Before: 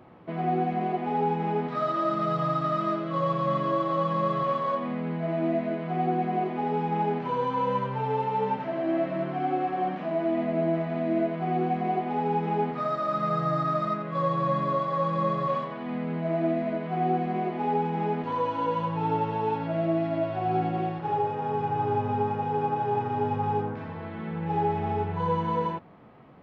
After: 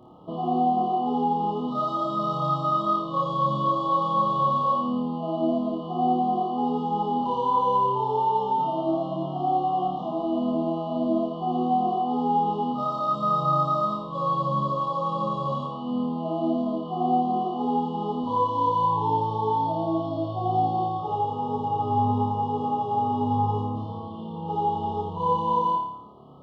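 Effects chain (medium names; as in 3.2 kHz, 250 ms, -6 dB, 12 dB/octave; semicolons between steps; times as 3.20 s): FFT band-reject 1.3–2.8 kHz; flutter echo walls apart 4.8 m, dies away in 0.72 s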